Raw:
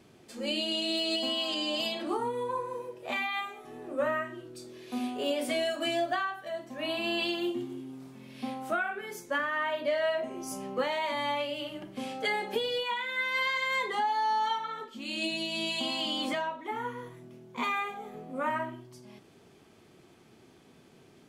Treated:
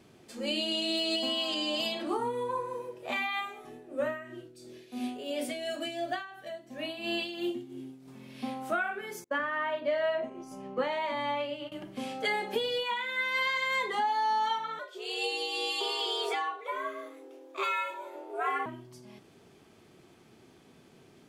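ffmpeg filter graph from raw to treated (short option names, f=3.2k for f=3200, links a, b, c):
-filter_complex "[0:a]asettb=1/sr,asplit=3[a][b][c];[a]atrim=end=3.694[d];[b]atrim=start=3.69:end=8.08,asetpts=PTS-STARTPTS,afade=t=in:d=0.004:c=qsin,afade=t=out:st=4.386:d=0.004:c=qsin,equalizer=f=1.1k:t=o:w=0.73:g=-7.5,tremolo=f=2.9:d=0.62[e];[c]atrim=start=8.076[f];[d][e]acrossfade=d=0.004:c1=hsin:c2=qsin[g];[g][f]acrossfade=d=0.004:c1=qsin:c2=hsin,asettb=1/sr,asplit=3[h][i][j];[h]atrim=end=9.244[k];[i]atrim=start=9.24:end=11.72,asetpts=PTS-STARTPTS,afade=t=in:d=0.004:c=qsin,afade=t=out:st=2.476:d=0.004:c=qsin,lowpass=f=2.5k:p=1,agate=range=-33dB:threshold=-36dB:ratio=3:release=100:detection=peak[l];[j]atrim=start=11.716[m];[k][l]acrossfade=d=0.004:c1=hsin:c2=qsin[n];[n][m]acrossfade=d=0.004:c1=qsin:c2=hsin,asettb=1/sr,asplit=3[o][p][q];[o]atrim=end=14.794[r];[p]atrim=start=14.79:end=18.66,asetpts=PTS-STARTPTS,afade=t=in:d=0.004:c=qsin,afade=t=out:st=3.866:d=0.004:c=qsin,highpass=80,afreqshift=150[s];[q]atrim=start=18.656[t];[r][s]acrossfade=d=0.004:c1=hsin:c2=qsin[u];[u][t]acrossfade=d=0.004:c1=qsin:c2=hsin"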